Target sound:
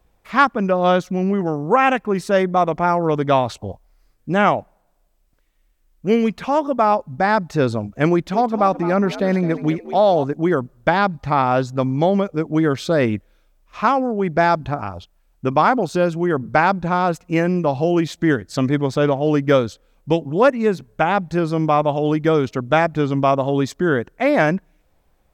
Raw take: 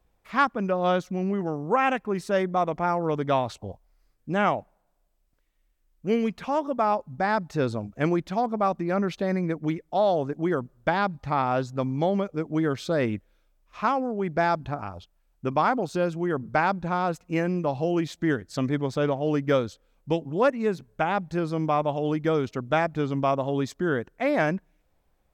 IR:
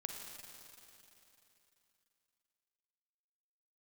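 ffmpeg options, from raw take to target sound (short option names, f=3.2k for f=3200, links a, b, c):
-filter_complex "[0:a]asettb=1/sr,asplit=3[a][b][c];[a]atrim=end=8.124[d];[b]atrim=start=8.12:end=10.24,asetpts=PTS-STARTPTS,afade=t=in:d=0.004:c=qsin,afade=t=out:st=2.116:d=0.004:c=qsin,asplit=4[e][f][g][h];[f]adelay=213,afreqshift=72,volume=-14dB[i];[g]adelay=426,afreqshift=144,volume=-24.2dB[j];[h]adelay=639,afreqshift=216,volume=-34.3dB[k];[e][i][j][k]amix=inputs=4:normalize=0,atrim=end_sample=93492[l];[c]atrim=start=10.236[m];[d][l]acrossfade=d=0.004:c1=hsin:c2=qsin[n];[n][m]acrossfade=d=0.004:c1=qsin:c2=hsin,volume=7.5dB"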